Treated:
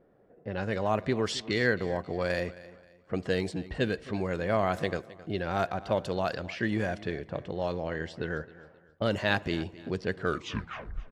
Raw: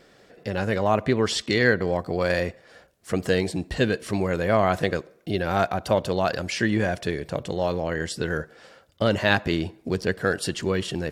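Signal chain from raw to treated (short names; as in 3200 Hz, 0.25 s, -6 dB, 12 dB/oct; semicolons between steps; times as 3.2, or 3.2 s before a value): tape stop at the end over 0.92 s; low-pass opened by the level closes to 790 Hz, open at -18 dBFS; feedback echo 0.265 s, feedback 33%, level -18.5 dB; gain -6.5 dB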